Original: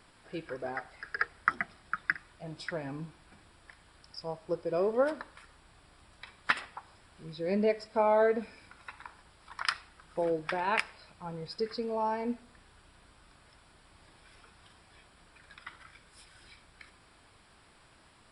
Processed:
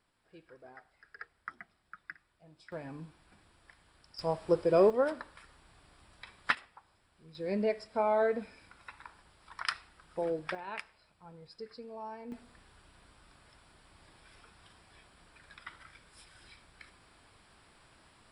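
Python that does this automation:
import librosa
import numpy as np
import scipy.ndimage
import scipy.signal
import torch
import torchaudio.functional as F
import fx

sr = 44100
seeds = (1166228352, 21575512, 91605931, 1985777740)

y = fx.gain(x, sr, db=fx.steps((0.0, -16.0), (2.72, -5.0), (4.19, 6.0), (4.9, -1.5), (6.55, -11.0), (7.35, -3.0), (10.55, -12.0), (12.32, -1.0)))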